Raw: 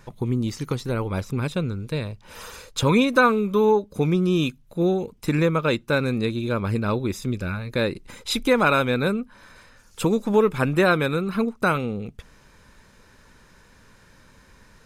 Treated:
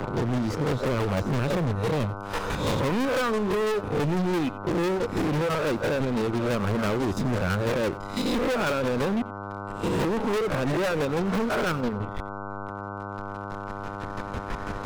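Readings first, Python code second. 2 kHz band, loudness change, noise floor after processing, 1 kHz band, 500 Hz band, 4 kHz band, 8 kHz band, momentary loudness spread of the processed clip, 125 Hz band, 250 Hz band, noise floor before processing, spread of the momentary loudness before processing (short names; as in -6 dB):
-5.0 dB, -4.0 dB, -35 dBFS, -2.5 dB, -3.0 dB, -4.0 dB, -2.5 dB, 10 LU, -2.5 dB, -3.0 dB, -54 dBFS, 11 LU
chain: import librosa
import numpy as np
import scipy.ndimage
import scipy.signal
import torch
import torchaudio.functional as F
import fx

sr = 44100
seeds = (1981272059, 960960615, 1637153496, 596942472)

p1 = fx.spec_swells(x, sr, rise_s=0.63)
p2 = fx.recorder_agc(p1, sr, target_db=-7.0, rise_db_per_s=5.7, max_gain_db=30)
p3 = fx.lowpass(p2, sr, hz=1200.0, slope=6)
p4 = fx.dereverb_blind(p3, sr, rt60_s=0.72)
p5 = fx.dynamic_eq(p4, sr, hz=490.0, q=0.79, threshold_db=-31.0, ratio=4.0, max_db=3)
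p6 = fx.leveller(p5, sr, passes=3)
p7 = fx.chopper(p6, sr, hz=6.0, depth_pct=65, duty_pct=30)
p8 = fx.backlash(p7, sr, play_db=-24.5)
p9 = p7 + F.gain(torch.from_numpy(p8), -4.0).numpy()
p10 = fx.dmg_buzz(p9, sr, base_hz=100.0, harmonics=15, level_db=-31.0, tilt_db=-1, odd_only=False)
p11 = np.clip(p10, -10.0 ** (-16.0 / 20.0), 10.0 ** (-16.0 / 20.0))
p12 = p11 + fx.echo_single(p11, sr, ms=89, db=-19.5, dry=0)
p13 = fx.band_squash(p12, sr, depth_pct=40)
y = F.gain(torch.from_numpy(p13), -7.5).numpy()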